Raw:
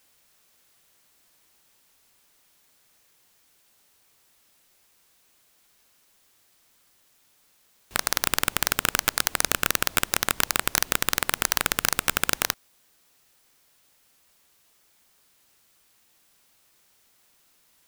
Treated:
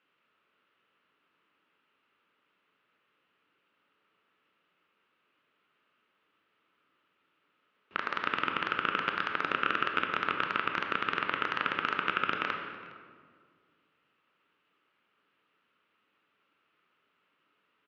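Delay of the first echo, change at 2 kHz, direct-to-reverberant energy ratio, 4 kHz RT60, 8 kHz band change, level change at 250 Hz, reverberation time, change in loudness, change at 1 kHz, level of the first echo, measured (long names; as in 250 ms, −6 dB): 412 ms, −3.5 dB, 2.5 dB, 1.2 s, below −35 dB, −4.0 dB, 1.9 s, −7.0 dB, −0.5 dB, −21.5 dB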